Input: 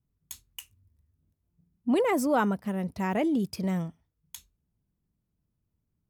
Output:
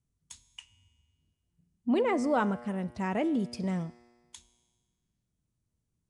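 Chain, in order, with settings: 0.45–2.24 s: low-pass 6 kHz 12 dB/octave; feedback comb 120 Hz, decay 1.6 s, mix 60%; trim +5 dB; Nellymoser 44 kbps 22.05 kHz

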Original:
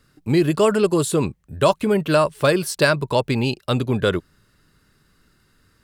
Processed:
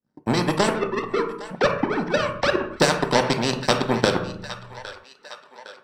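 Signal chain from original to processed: 0.69–2.80 s: formants replaced by sine waves; treble shelf 2.9 kHz -11 dB; harmonic-percussive split percussive +8 dB; peaking EQ 530 Hz +4 dB 0.64 oct; compression 2:1, threshold -24 dBFS, peak gain reduction 12 dB; power-law waveshaper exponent 2; volume shaper 144 bpm, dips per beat 1, -23 dB, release 102 ms; feedback echo behind a high-pass 810 ms, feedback 52%, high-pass 1.6 kHz, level -19 dB; reverberation RT60 0.45 s, pre-delay 3 ms, DRR 5.5 dB; spectrum-flattening compressor 2:1; trim -1.5 dB

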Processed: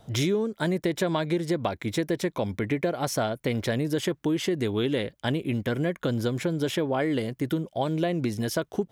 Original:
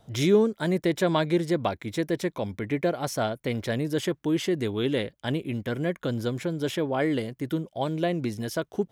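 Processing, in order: compression 6:1, threshold -27 dBFS, peak gain reduction 12 dB; trim +4.5 dB

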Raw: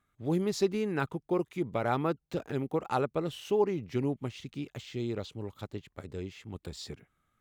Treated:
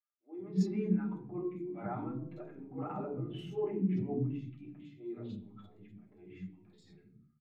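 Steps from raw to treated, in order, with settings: de-hum 72.19 Hz, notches 15; 2.44–4.07 s: bass shelf 290 Hz +6.5 dB; transient shaper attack -11 dB, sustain +9 dB; tremolo saw down 1.8 Hz, depth 60%; three bands offset in time mids, highs, lows 50/160 ms, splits 300/3400 Hz; reverberation RT60 0.70 s, pre-delay 3 ms, DRR -3 dB; spectral contrast expander 1.5:1; trim -5.5 dB

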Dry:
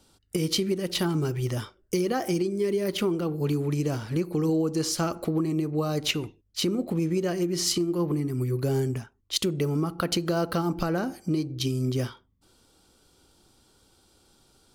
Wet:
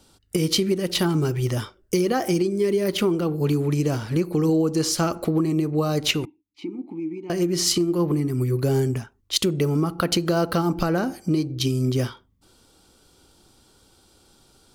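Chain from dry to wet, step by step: 6.25–7.30 s: vowel filter u; trim +4.5 dB

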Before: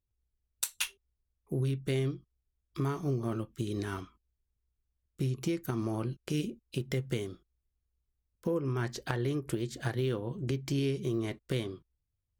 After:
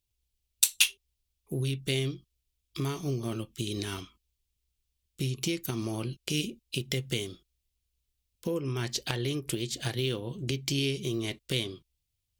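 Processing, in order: resonant high shelf 2.1 kHz +9.5 dB, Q 1.5

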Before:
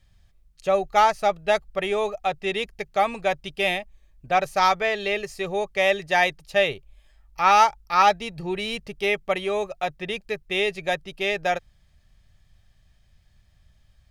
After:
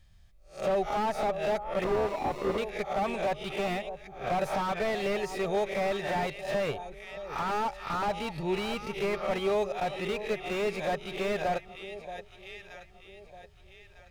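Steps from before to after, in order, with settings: reverse spectral sustain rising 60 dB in 0.31 s; peak limiter -15.5 dBFS, peak gain reduction 11 dB; on a send: echo whose repeats swap between lows and highs 626 ms, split 920 Hz, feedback 58%, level -11.5 dB; 1.84–2.58 s: on the sum: sample-rate reducer 1.6 kHz, jitter 0%; slew-rate limiter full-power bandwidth 52 Hz; trim -2 dB

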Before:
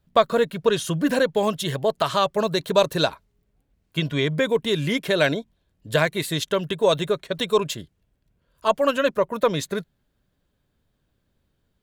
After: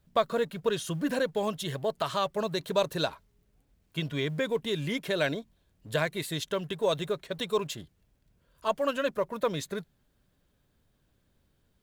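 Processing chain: companding laws mixed up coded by mu; trim -8.5 dB

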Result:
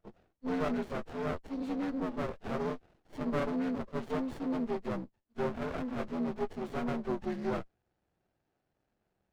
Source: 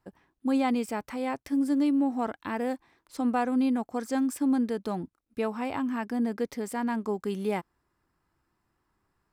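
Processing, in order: frequency axis rescaled in octaves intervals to 78%; peaking EQ 280 Hz -8 dB 0.36 oct; overdrive pedal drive 10 dB, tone 2.3 kHz, clips at -18 dBFS; sliding maximum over 33 samples

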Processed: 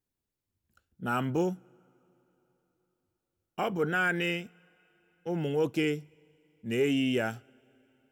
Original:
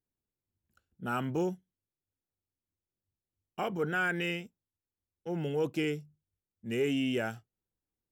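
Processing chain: two-slope reverb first 0.21 s, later 3.8 s, from -22 dB, DRR 19.5 dB; trim +3 dB

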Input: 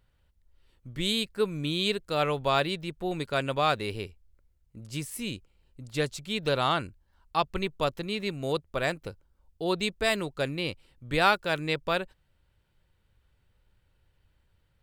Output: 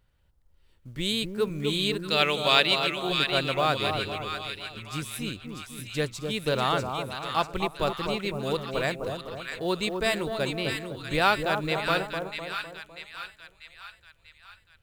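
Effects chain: 2.01–3.09 s: frequency weighting D; two-band feedback delay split 1.2 kHz, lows 253 ms, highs 642 ms, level -5 dB; short-mantissa float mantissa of 4-bit

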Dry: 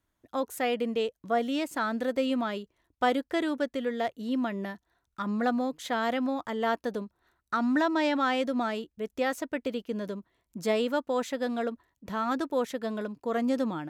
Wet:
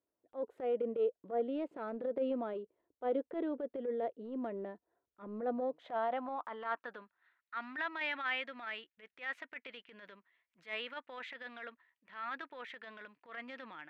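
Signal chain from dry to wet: band-pass sweep 470 Hz -> 2 kHz, 5.46–7.31 s; resonant high shelf 4.6 kHz -9.5 dB, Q 1.5; transient shaper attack -11 dB, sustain +2 dB

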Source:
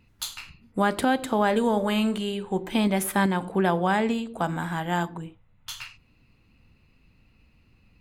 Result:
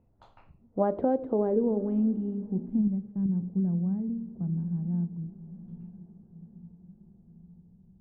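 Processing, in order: 2.81–3.29 s: power-law waveshaper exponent 1.4; echo that smears into a reverb 947 ms, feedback 55%, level -16 dB; low-pass sweep 660 Hz -> 170 Hz, 0.71–3.04 s; trim -5.5 dB

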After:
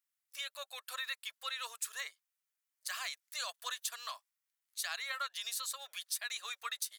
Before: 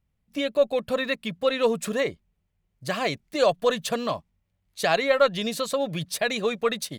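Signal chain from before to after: inverse Chebyshev high-pass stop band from 240 Hz, stop band 80 dB; peaking EQ 2.4 kHz -14 dB 2.1 oct; compression 3:1, threshold -42 dBFS, peak gain reduction 9 dB; trim +5.5 dB

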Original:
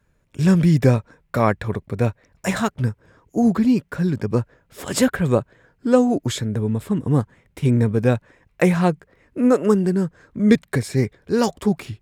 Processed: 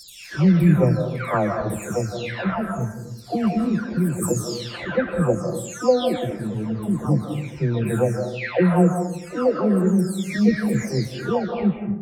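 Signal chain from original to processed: delay that grows with frequency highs early, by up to 741 ms; algorithmic reverb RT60 0.77 s, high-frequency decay 0.4×, pre-delay 120 ms, DRR 5 dB

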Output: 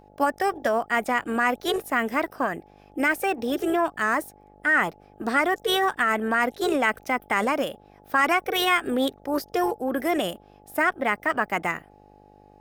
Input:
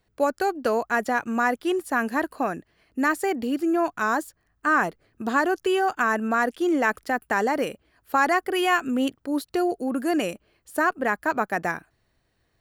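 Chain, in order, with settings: mains buzz 50 Hz, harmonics 17, -53 dBFS -1 dB/octave; formant shift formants +3 st

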